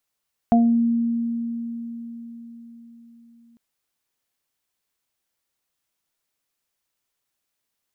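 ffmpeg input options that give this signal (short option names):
-f lavfi -i "aevalsrc='0.237*pow(10,-3*t/4.7)*sin(2*PI*233*t)+0.0299*pow(10,-3*t/0.52)*sin(2*PI*466*t)+0.211*pow(10,-3*t/0.31)*sin(2*PI*699*t)':d=3.05:s=44100"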